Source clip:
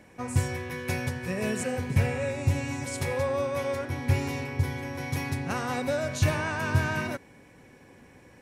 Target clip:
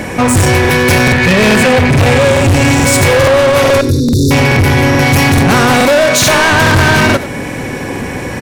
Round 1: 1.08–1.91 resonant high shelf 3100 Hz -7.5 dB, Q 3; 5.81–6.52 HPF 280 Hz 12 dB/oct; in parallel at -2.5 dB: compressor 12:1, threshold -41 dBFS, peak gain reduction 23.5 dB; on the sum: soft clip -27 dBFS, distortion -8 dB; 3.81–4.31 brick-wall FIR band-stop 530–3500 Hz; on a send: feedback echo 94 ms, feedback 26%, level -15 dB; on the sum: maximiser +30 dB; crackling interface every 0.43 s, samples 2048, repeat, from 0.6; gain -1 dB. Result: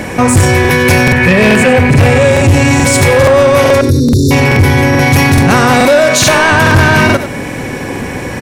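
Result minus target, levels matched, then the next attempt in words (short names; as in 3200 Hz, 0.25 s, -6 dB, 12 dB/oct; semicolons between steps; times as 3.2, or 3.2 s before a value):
soft clip: distortion -4 dB
1.08–1.91 resonant high shelf 3100 Hz -7.5 dB, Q 3; 5.81–6.52 HPF 280 Hz 12 dB/oct; in parallel at -2.5 dB: compressor 12:1, threshold -41 dBFS, peak gain reduction 23.5 dB; on the sum: soft clip -35.5 dBFS, distortion -4 dB; 3.81–4.31 brick-wall FIR band-stop 530–3500 Hz; on a send: feedback echo 94 ms, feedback 26%, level -15 dB; on the sum: maximiser +30 dB; crackling interface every 0.43 s, samples 2048, repeat, from 0.6; gain -1 dB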